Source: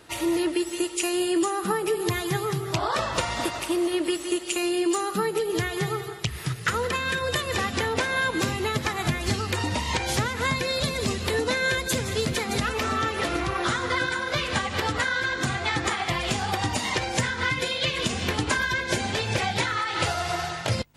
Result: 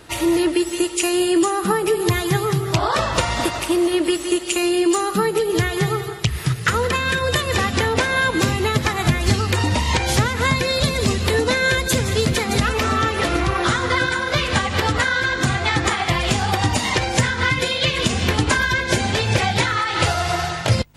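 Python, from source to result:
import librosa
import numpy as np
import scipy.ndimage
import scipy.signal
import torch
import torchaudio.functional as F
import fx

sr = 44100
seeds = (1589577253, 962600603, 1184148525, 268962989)

y = fx.low_shelf(x, sr, hz=110.0, db=7.0)
y = y * 10.0 ** (6.0 / 20.0)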